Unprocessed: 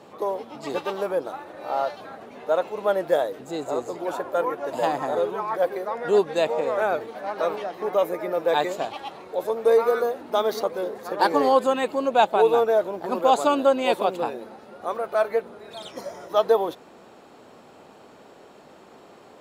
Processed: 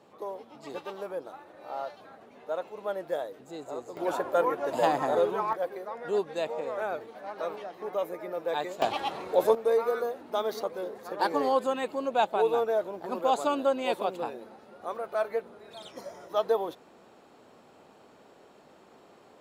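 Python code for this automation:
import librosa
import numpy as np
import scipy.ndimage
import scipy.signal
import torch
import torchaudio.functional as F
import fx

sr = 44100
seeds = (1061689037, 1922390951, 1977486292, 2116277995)

y = fx.gain(x, sr, db=fx.steps((0.0, -10.5), (3.97, -1.0), (5.53, -9.0), (8.82, 3.5), (9.55, -7.0)))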